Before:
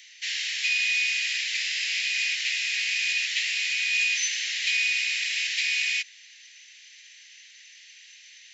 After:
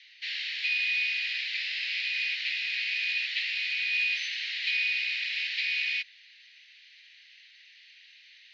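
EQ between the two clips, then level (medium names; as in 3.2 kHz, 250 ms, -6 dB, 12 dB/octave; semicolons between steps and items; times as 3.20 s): Chebyshev band-pass 1.3–4.4 kHz, order 3; -3.0 dB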